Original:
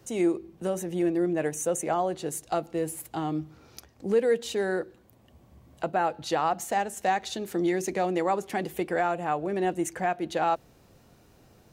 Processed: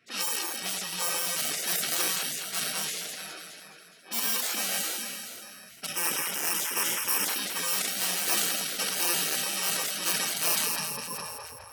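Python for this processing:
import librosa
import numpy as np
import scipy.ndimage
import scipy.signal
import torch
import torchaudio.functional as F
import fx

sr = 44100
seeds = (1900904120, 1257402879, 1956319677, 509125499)

p1 = fx.bit_reversed(x, sr, seeds[0], block=64)
p2 = fx.fixed_phaser(p1, sr, hz=1800.0, stages=4, at=(5.86, 7.28))
p3 = fx.env_lowpass(p2, sr, base_hz=1300.0, full_db=-21.0)
p4 = fx.over_compress(p3, sr, threshold_db=-30.0, ratio=-1.0)
p5 = p3 + F.gain(torch.from_numpy(p4), -3.0).numpy()
p6 = fx.vowel_filter(p5, sr, vowel='a', at=(3.13, 4.11), fade=0.02)
p7 = fx.echo_split(p6, sr, split_hz=1100.0, low_ms=437, high_ms=207, feedback_pct=52, wet_db=-9.0)
p8 = np.clip(p7, -10.0 ** (-21.0 / 20.0), 10.0 ** (-21.0 / 20.0))
p9 = fx.filter_sweep_highpass(p8, sr, from_hz=810.0, to_hz=190.0, start_s=10.13, end_s=11.68, q=2.8)
p10 = fx.spec_gate(p9, sr, threshold_db=-20, keep='weak')
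p11 = fx.sustainer(p10, sr, db_per_s=23.0)
y = F.gain(torch.from_numpy(p11), 9.0).numpy()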